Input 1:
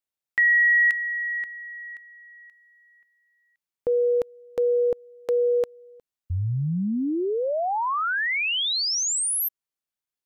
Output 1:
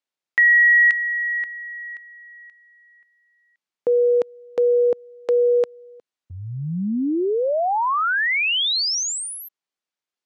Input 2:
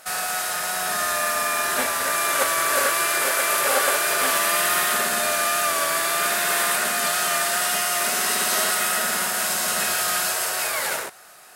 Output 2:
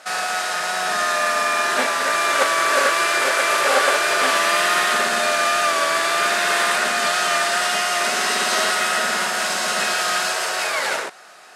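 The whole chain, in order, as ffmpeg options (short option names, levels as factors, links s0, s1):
-af "highpass=200,lowpass=6000,volume=1.68"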